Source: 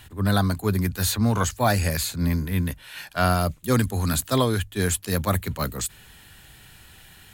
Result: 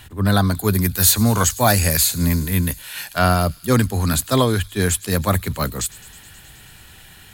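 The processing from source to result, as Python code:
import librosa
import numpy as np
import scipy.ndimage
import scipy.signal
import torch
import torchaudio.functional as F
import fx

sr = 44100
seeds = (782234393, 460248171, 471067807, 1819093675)

y = fx.high_shelf(x, sr, hz=6100.0, db=10.5, at=(0.55, 3.19))
y = fx.echo_wet_highpass(y, sr, ms=106, feedback_pct=81, hz=3500.0, wet_db=-19.0)
y = y * librosa.db_to_amplitude(4.5)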